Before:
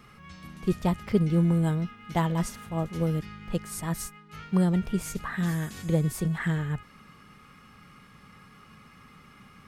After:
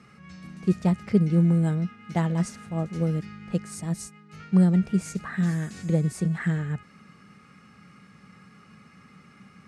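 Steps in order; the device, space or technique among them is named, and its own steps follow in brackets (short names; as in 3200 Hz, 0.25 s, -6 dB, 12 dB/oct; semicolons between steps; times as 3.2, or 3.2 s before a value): 3.73–4.4 dynamic EQ 1500 Hz, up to -8 dB, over -52 dBFS, Q 1.1; car door speaker (speaker cabinet 88–9400 Hz, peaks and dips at 190 Hz +6 dB, 1000 Hz -7 dB, 3300 Hz -7 dB)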